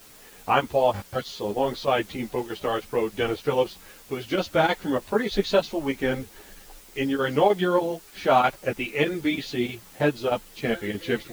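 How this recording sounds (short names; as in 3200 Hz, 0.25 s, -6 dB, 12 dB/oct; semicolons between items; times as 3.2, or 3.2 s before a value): chopped level 3.2 Hz, depth 60%, duty 90%; a quantiser's noise floor 8-bit, dither triangular; a shimmering, thickened sound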